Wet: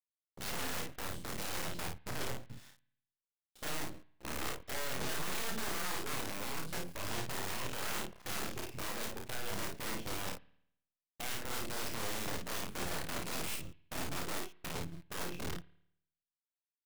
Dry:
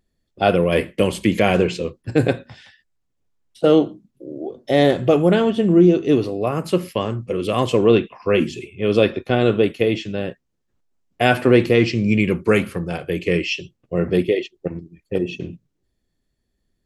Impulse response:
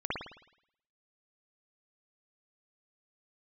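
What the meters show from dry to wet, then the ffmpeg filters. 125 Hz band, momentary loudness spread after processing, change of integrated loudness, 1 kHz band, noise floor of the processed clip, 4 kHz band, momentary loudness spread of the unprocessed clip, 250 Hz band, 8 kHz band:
-23.0 dB, 6 LU, -21.0 dB, -16.0 dB, under -85 dBFS, -12.0 dB, 13 LU, -27.0 dB, no reading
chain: -filter_complex "[0:a]afwtdn=0.0501,equalizer=f=350:t=o:w=1.7:g=-6,acompressor=threshold=0.0178:ratio=3,alimiter=level_in=1.68:limit=0.0631:level=0:latency=1:release=37,volume=0.596,aeval=exprs='(mod(59.6*val(0)+1,2)-1)/59.6':c=same,acrusher=bits=7:dc=4:mix=0:aa=0.000001,asoftclip=type=tanh:threshold=0.0141,aecho=1:1:31|54:0.596|0.562,asplit=2[s0][s1];[1:a]atrim=start_sample=2205[s2];[s1][s2]afir=irnorm=-1:irlink=0,volume=0.0531[s3];[s0][s3]amix=inputs=2:normalize=0,volume=1.68"

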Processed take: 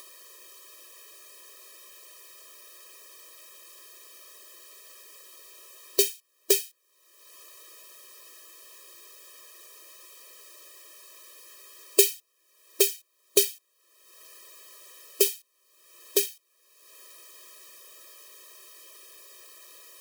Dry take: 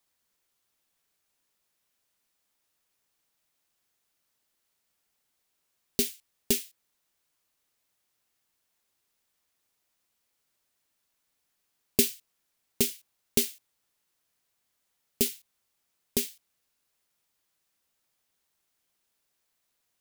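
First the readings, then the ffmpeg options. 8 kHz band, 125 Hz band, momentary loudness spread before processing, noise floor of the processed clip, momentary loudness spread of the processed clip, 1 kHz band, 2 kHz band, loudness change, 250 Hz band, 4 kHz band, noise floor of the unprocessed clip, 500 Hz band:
+5.0 dB, under -35 dB, 17 LU, -70 dBFS, 17 LU, +5.0 dB, +4.5 dB, +4.5 dB, -4.5 dB, +4.5 dB, -78 dBFS, +8.0 dB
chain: -af "acompressor=mode=upward:threshold=0.0178:ratio=2.5,afftfilt=real='re*eq(mod(floor(b*sr/1024/330),2),1)':imag='im*eq(mod(floor(b*sr/1024/330),2),1)':win_size=1024:overlap=0.75,volume=2.51"

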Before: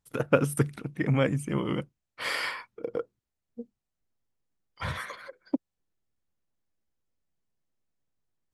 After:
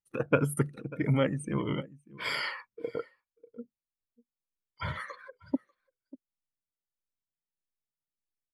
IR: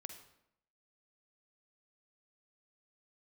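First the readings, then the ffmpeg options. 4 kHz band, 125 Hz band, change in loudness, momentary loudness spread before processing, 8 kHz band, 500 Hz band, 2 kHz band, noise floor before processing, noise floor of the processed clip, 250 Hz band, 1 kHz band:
-1.5 dB, -2.0 dB, -2.5 dB, 21 LU, -3.5 dB, -3.0 dB, -2.5 dB, -85 dBFS, under -85 dBFS, -2.0 dB, -2.5 dB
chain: -af "afftfilt=real='re*pow(10,8/40*sin(2*PI*(1.7*log(max(b,1)*sr/1024/100)/log(2)-(-1.6)*(pts-256)/sr)))':imag='im*pow(10,8/40*sin(2*PI*(1.7*log(max(b,1)*sr/1024/100)/log(2)-(-1.6)*(pts-256)/sr)))':win_size=1024:overlap=0.75,bandreject=f=720:w=12,aecho=1:1:592:0.112,afftdn=nr=14:nf=-43,volume=0.708"

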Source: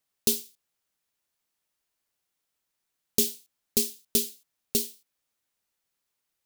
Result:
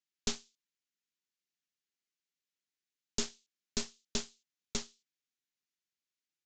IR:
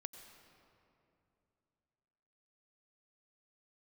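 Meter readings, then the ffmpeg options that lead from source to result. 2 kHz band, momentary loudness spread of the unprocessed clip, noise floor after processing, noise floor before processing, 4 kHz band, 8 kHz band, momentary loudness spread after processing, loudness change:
-0.5 dB, 9 LU, under -85 dBFS, -82 dBFS, -6.5 dB, -10.5 dB, 7 LU, -12.0 dB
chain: -filter_complex "[0:a]highpass=160,asplit=2[s0][s1];[s1]acompressor=threshold=0.0224:ratio=6,volume=1[s2];[s0][s2]amix=inputs=2:normalize=0,asuperstop=centerf=780:order=4:qfactor=0.63,aeval=exprs='0.562*(cos(1*acos(clip(val(0)/0.562,-1,1)))-cos(1*PI/2))+0.1*(cos(3*acos(clip(val(0)/0.562,-1,1)))-cos(3*PI/2))+0.178*(cos(5*acos(clip(val(0)/0.562,-1,1)))-cos(5*PI/2))+0.126*(cos(7*acos(clip(val(0)/0.562,-1,1)))-cos(7*PI/2))+0.0708*(cos(8*acos(clip(val(0)/0.562,-1,1)))-cos(8*PI/2))':c=same,aresample=16000,aresample=44100,volume=0.376"

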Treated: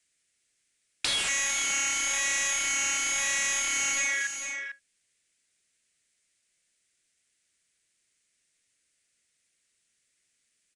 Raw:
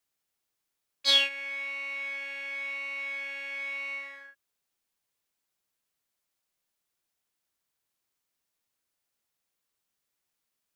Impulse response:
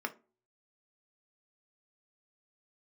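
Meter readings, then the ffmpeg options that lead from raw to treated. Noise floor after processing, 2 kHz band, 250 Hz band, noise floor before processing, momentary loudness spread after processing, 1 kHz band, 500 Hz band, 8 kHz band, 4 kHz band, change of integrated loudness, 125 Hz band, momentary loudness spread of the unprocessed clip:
-75 dBFS, +4.0 dB, +7.0 dB, -83 dBFS, 7 LU, +8.5 dB, -1.0 dB, +23.5 dB, -2.0 dB, +3.5 dB, no reading, 13 LU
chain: -filter_complex "[0:a]afwtdn=0.00447,equalizer=f=1000:t=o:w=1:g=-12,equalizer=f=2000:t=o:w=1:g=9,equalizer=f=8000:t=o:w=1:g=9,asoftclip=type=hard:threshold=0.106,bandreject=f=810:w=12,aeval=exprs='0.119*sin(PI/2*7.94*val(0)/0.119)':c=same,asplit=2[s0][s1];[s1]aecho=0:1:448:0.224[s2];[s0][s2]amix=inputs=2:normalize=0,acrossover=split=1400|3500[s3][s4][s5];[s3]acompressor=threshold=0.00891:ratio=4[s6];[s4]acompressor=threshold=0.0282:ratio=4[s7];[s5]acompressor=threshold=0.0398:ratio=4[s8];[s6][s7][s8]amix=inputs=3:normalize=0,aresample=22050,aresample=44100"

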